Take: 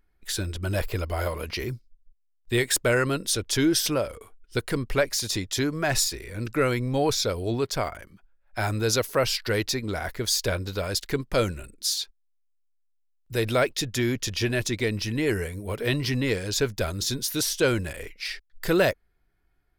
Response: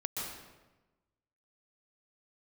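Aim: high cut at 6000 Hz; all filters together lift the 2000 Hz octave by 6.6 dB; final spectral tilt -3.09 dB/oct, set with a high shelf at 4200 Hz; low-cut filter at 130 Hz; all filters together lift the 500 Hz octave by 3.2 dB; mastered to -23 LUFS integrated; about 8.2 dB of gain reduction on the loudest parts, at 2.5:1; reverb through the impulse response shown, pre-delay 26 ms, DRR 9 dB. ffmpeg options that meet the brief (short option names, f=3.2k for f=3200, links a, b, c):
-filter_complex "[0:a]highpass=130,lowpass=6k,equalizer=f=500:t=o:g=3.5,equalizer=f=2k:t=o:g=7,highshelf=f=4.2k:g=6,acompressor=threshold=-26dB:ratio=2.5,asplit=2[a][b];[1:a]atrim=start_sample=2205,adelay=26[c];[b][c]afir=irnorm=-1:irlink=0,volume=-12dB[d];[a][d]amix=inputs=2:normalize=0,volume=5dB"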